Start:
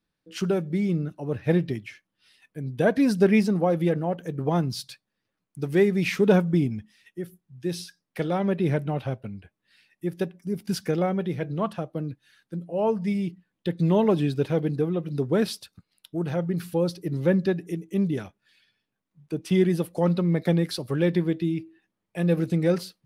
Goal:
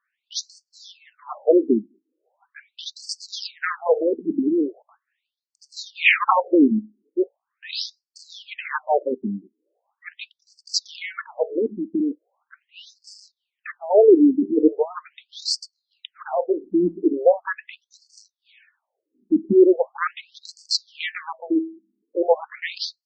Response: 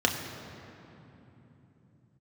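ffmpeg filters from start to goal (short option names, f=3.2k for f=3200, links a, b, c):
-af "aeval=exprs='0.422*sin(PI/2*2.51*val(0)/0.422)':c=same,adynamicsmooth=sensitivity=3.5:basefreq=2.8k,afftfilt=real='re*between(b*sr/1024,270*pow(6200/270,0.5+0.5*sin(2*PI*0.4*pts/sr))/1.41,270*pow(6200/270,0.5+0.5*sin(2*PI*0.4*pts/sr))*1.41)':imag='im*between(b*sr/1024,270*pow(6200/270,0.5+0.5*sin(2*PI*0.4*pts/sr))/1.41,270*pow(6200/270,0.5+0.5*sin(2*PI*0.4*pts/sr))*1.41)':win_size=1024:overlap=0.75,volume=3dB"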